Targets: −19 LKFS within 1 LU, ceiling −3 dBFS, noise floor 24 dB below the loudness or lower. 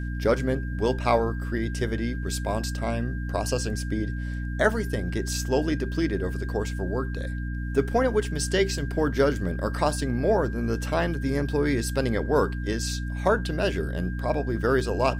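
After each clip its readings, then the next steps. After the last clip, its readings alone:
mains hum 60 Hz; hum harmonics up to 300 Hz; level of the hum −28 dBFS; interfering tone 1,600 Hz; level of the tone −41 dBFS; integrated loudness −26.5 LKFS; sample peak −7.5 dBFS; target loudness −19.0 LKFS
→ hum removal 60 Hz, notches 5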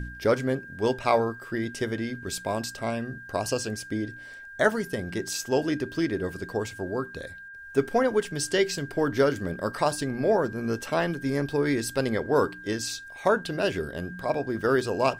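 mains hum none found; interfering tone 1,600 Hz; level of the tone −41 dBFS
→ notch filter 1,600 Hz, Q 30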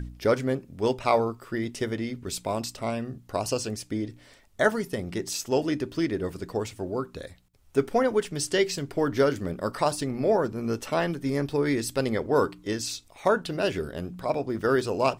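interfering tone none found; integrated loudness −28.0 LKFS; sample peak −8.5 dBFS; target loudness −19.0 LKFS
→ level +9 dB
brickwall limiter −3 dBFS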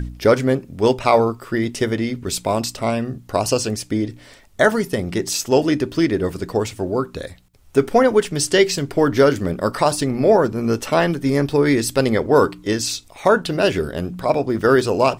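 integrated loudness −19.0 LKFS; sample peak −3.0 dBFS; background noise floor −47 dBFS

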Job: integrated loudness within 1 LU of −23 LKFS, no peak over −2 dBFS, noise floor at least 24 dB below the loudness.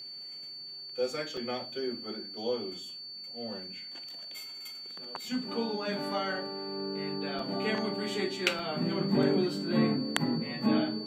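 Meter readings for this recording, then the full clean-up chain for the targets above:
number of dropouts 3; longest dropout 3.1 ms; interfering tone 4,500 Hz; level of the tone −41 dBFS; integrated loudness −33.0 LKFS; sample peak −8.0 dBFS; target loudness −23.0 LKFS
→ repair the gap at 0:01.37/0:07.39/0:08.59, 3.1 ms
notch filter 4,500 Hz, Q 30
level +10 dB
brickwall limiter −2 dBFS

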